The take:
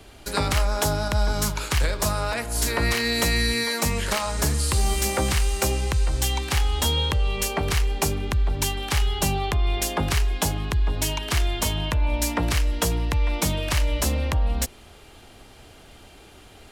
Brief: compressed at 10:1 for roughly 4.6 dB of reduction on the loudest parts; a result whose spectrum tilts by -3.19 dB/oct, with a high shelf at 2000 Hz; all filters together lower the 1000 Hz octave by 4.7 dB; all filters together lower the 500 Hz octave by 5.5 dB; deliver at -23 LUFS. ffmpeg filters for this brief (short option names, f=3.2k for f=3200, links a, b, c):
-af "equalizer=f=500:t=o:g=-6,equalizer=f=1k:t=o:g=-5,highshelf=f=2k:g=3.5,acompressor=threshold=-22dB:ratio=10,volume=3.5dB"